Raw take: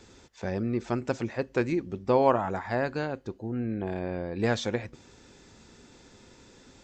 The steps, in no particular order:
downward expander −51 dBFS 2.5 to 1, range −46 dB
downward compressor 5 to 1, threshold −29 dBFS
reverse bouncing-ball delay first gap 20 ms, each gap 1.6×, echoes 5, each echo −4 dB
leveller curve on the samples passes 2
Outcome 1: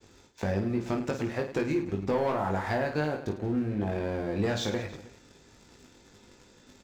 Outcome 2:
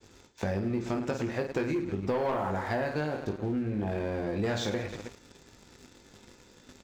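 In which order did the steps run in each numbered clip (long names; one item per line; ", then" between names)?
downward expander, then leveller curve on the samples, then downward compressor, then reverse bouncing-ball delay
downward expander, then reverse bouncing-ball delay, then leveller curve on the samples, then downward compressor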